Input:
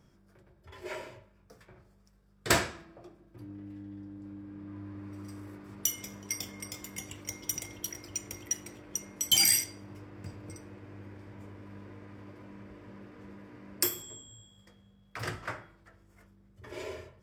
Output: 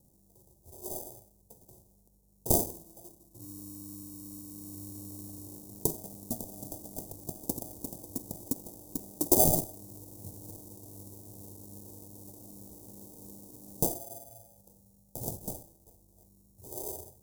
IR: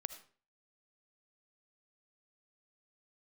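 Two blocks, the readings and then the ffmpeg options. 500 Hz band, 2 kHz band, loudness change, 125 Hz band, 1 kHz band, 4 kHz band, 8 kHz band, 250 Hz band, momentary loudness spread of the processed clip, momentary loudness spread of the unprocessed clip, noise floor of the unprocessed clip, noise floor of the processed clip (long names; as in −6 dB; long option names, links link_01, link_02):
+4.5 dB, below −40 dB, −1.0 dB, +2.5 dB, +0.5 dB, −17.0 dB, −4.0 dB, +4.0 dB, 21 LU, 22 LU, −63 dBFS, −64 dBFS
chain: -filter_complex "[0:a]acrusher=samples=32:mix=1:aa=0.000001,asuperstop=centerf=1900:order=8:qfactor=0.53,equalizer=frequency=4500:width=1.4:gain=-12,asplit=2[link_01][link_02];[1:a]atrim=start_sample=2205,atrim=end_sample=3087,asetrate=32634,aresample=44100[link_03];[link_02][link_03]afir=irnorm=-1:irlink=0,volume=1dB[link_04];[link_01][link_04]amix=inputs=2:normalize=0,crystalizer=i=5.5:c=0,volume=-8.5dB"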